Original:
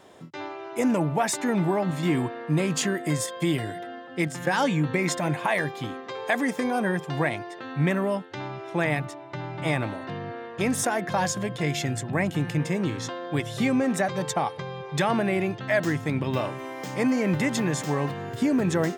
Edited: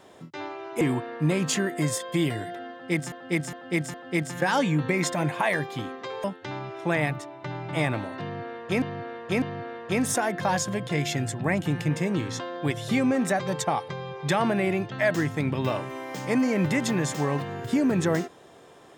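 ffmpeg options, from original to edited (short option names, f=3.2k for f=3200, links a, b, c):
-filter_complex "[0:a]asplit=8[a][b][c][d][e][f][g][h];[a]atrim=end=0.812[i];[b]atrim=start=2.088:end=4.402[j];[c]atrim=start=3.988:end=4.402[k];[d]atrim=start=3.988:end=4.402[l];[e]atrim=start=3.988:end=6.292[m];[f]atrim=start=8.128:end=10.712[n];[g]atrim=start=10.108:end=10.712[o];[h]atrim=start=10.108[p];[i][j]acrossfade=d=0.004:c1=hsin:c2=hsin[q];[q][k]acrossfade=d=0.004:c1=hsin:c2=hsin[r];[r][l]acrossfade=d=0.004:c1=hsin:c2=hsin[s];[s][m]acrossfade=d=0.004:c1=hsin:c2=hsin[t];[t][n]acrossfade=d=0.004:c1=hsin:c2=hsin[u];[u][o]acrossfade=d=0.004:c1=hsin:c2=hsin[v];[v][p]acrossfade=d=0.004:c1=hsin:c2=hsin"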